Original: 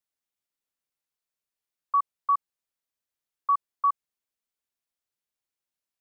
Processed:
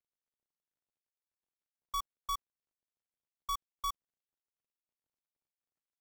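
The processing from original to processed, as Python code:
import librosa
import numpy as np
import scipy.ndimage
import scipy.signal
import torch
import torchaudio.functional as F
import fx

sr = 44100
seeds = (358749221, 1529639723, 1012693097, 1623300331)

y = scipy.signal.medfilt(x, 41)
y = y * librosa.db_to_amplitude(6.5)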